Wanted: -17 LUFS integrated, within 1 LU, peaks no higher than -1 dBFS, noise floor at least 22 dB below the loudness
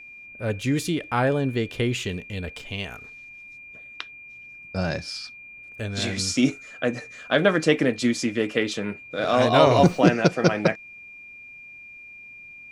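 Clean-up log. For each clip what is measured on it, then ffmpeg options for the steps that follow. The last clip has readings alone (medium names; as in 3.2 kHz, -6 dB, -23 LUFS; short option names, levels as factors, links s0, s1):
steady tone 2.4 kHz; tone level -41 dBFS; loudness -23.5 LUFS; peak level -2.5 dBFS; loudness target -17.0 LUFS
-> -af "bandreject=f=2400:w=30"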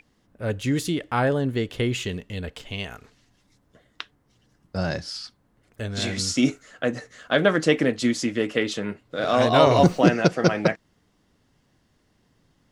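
steady tone not found; loudness -23.5 LUFS; peak level -2.5 dBFS; loudness target -17.0 LUFS
-> -af "volume=2.11,alimiter=limit=0.891:level=0:latency=1"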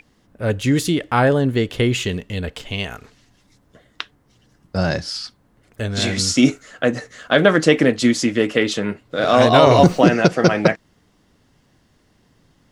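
loudness -17.5 LUFS; peak level -1.0 dBFS; noise floor -60 dBFS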